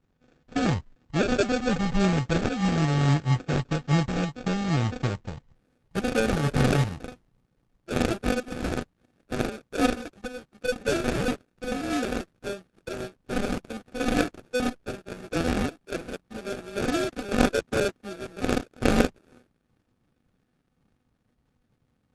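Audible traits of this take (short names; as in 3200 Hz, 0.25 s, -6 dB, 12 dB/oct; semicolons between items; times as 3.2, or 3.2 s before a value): a buzz of ramps at a fixed pitch in blocks of 16 samples; phasing stages 2, 3.6 Hz, lowest notch 620–2600 Hz; aliases and images of a low sample rate 1000 Hz, jitter 0%; Opus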